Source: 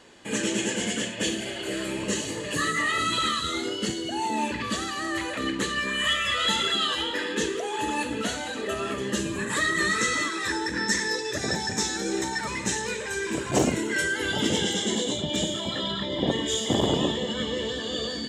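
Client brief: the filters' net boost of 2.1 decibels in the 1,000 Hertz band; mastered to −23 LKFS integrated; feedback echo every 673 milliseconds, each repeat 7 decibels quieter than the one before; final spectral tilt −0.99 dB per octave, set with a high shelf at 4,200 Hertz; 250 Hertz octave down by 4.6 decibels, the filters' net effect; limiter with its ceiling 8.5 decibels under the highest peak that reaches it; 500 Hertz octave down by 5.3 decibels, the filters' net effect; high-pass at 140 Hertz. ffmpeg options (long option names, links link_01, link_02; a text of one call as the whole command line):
ffmpeg -i in.wav -af "highpass=140,equalizer=frequency=250:width_type=o:gain=-3.5,equalizer=frequency=500:width_type=o:gain=-6.5,equalizer=frequency=1000:width_type=o:gain=4,highshelf=frequency=4200:gain=6.5,alimiter=limit=-16.5dB:level=0:latency=1,aecho=1:1:673|1346|2019|2692|3365:0.447|0.201|0.0905|0.0407|0.0183,volume=2dB" out.wav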